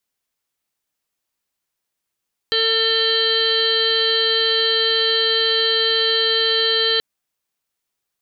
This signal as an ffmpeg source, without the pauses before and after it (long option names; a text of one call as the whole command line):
ffmpeg -f lavfi -i "aevalsrc='0.0794*sin(2*PI*449*t)+0.00944*sin(2*PI*898*t)+0.0282*sin(2*PI*1347*t)+0.0596*sin(2*PI*1796*t)+0.0106*sin(2*PI*2245*t)+0.0126*sin(2*PI*2694*t)+0.106*sin(2*PI*3143*t)+0.0106*sin(2*PI*3592*t)+0.0944*sin(2*PI*4041*t)+0.0447*sin(2*PI*4490*t)':duration=4.48:sample_rate=44100" out.wav